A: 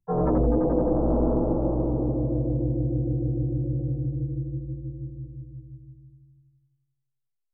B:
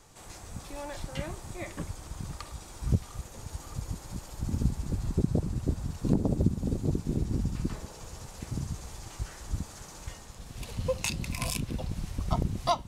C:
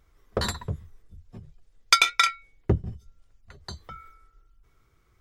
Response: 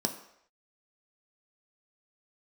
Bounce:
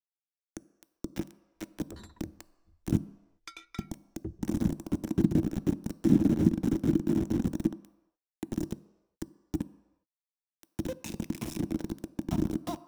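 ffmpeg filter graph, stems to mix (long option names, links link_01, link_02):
-filter_complex "[1:a]highpass=97,acrusher=bits=4:mix=0:aa=0.000001,volume=1.5dB,asplit=2[link_01][link_02];[link_02]volume=-13dB[link_03];[2:a]adelay=1550,volume=-17dB,asplit=2[link_04][link_05];[link_05]volume=-21dB[link_06];[3:a]atrim=start_sample=2205[link_07];[link_03][link_06]amix=inputs=2:normalize=0[link_08];[link_08][link_07]afir=irnorm=-1:irlink=0[link_09];[link_01][link_04][link_09]amix=inputs=3:normalize=0,acrossover=split=250[link_10][link_11];[link_11]acompressor=threshold=-53dB:ratio=2[link_12];[link_10][link_12]amix=inputs=2:normalize=0,equalizer=frequency=320:width_type=o:width=0.31:gain=13"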